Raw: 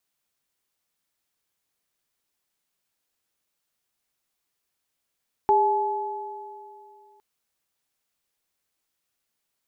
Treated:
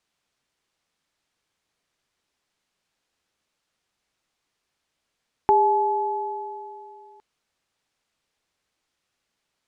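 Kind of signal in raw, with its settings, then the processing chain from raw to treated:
sine partials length 1.71 s, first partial 404 Hz, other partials 856 Hz, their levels 5 dB, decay 2.65 s, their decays 2.55 s, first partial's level -20.5 dB
in parallel at +1 dB: compressor, threshold -29 dBFS; on the sum: air absorption 71 m

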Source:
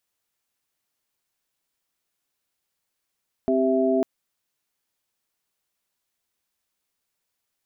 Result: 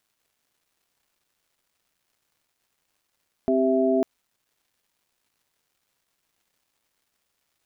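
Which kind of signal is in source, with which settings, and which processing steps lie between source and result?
chord C4/G4/E5 sine, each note -22.5 dBFS 0.55 s
crackle 580/s -61 dBFS

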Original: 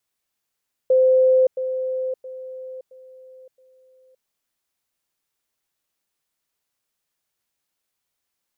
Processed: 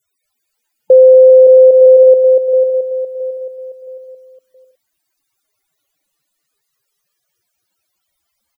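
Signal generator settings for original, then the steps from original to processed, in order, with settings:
level ladder 517 Hz -12 dBFS, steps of -10 dB, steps 5, 0.57 s 0.10 s
loudest bins only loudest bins 32; on a send: bouncing-ball echo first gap 0.24 s, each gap 0.65×, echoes 5; on the sum: maximiser +18 dB

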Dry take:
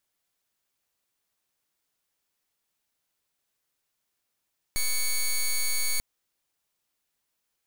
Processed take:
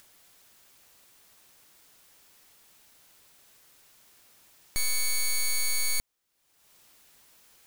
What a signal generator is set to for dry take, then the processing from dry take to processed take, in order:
pulse 2230 Hz, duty 9% -25 dBFS 1.24 s
upward compressor, threshold -41 dBFS

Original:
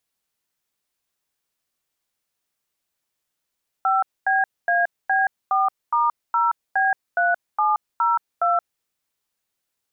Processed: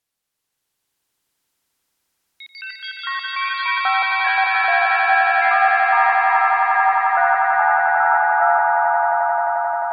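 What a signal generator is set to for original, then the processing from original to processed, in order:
DTMF "5BAB4*0B3702", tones 0.175 s, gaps 0.24 s, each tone -19 dBFS
echoes that change speed 0.347 s, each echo +6 st, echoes 3, each echo -6 dB; treble ducked by the level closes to 1600 Hz, closed at -17.5 dBFS; on a send: swelling echo 88 ms, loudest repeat 8, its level -4 dB

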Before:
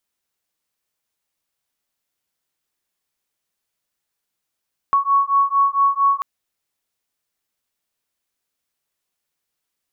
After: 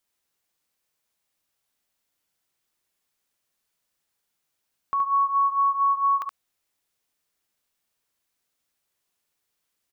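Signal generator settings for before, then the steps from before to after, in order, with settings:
beating tones 1110 Hz, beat 4.4 Hz, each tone -17 dBFS 1.29 s
limiter -20.5 dBFS; on a send: echo 72 ms -5 dB

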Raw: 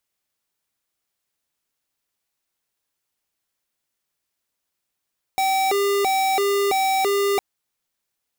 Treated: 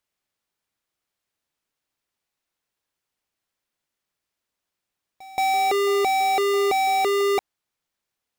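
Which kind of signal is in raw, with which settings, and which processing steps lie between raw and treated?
siren hi-lo 401–769 Hz 1.5/s square -20 dBFS 2.01 s
high shelf 6100 Hz -8 dB; pre-echo 0.176 s -21 dB

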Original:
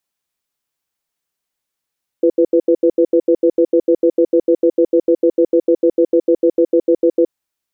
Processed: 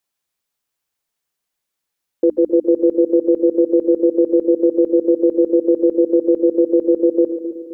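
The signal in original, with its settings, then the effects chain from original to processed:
cadence 340 Hz, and 498 Hz, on 0.07 s, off 0.08 s, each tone -11 dBFS 5.06 s
notches 60/120/180/240/300 Hz; dynamic EQ 670 Hz, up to -4 dB, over -33 dBFS, Q 3.3; split-band echo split 420 Hz, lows 0.261 s, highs 0.138 s, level -11 dB

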